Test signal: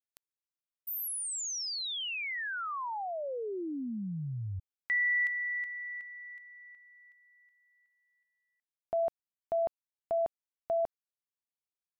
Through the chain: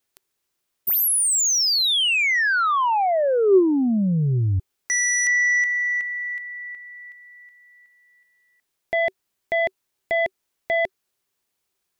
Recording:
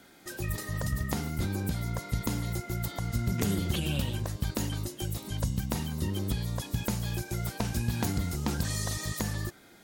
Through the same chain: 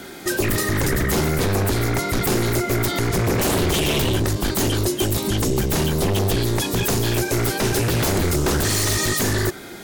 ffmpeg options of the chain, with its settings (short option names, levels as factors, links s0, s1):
-af "aeval=exprs='0.141*sin(PI/2*5.01*val(0)/0.141)':c=same,equalizer=f=380:t=o:w=0.2:g=8.5"